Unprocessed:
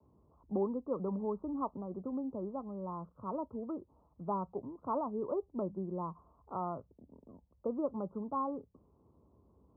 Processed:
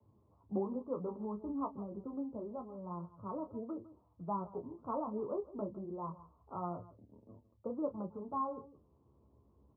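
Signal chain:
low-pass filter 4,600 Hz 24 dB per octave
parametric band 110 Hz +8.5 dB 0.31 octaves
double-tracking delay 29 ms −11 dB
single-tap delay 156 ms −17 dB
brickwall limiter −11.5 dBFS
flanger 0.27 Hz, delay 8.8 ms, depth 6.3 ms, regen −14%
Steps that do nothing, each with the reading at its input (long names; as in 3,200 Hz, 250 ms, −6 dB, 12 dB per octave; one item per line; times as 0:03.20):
low-pass filter 4,600 Hz: nothing at its input above 1,400 Hz
brickwall limiter −11.5 dBFS: peak of its input −22.5 dBFS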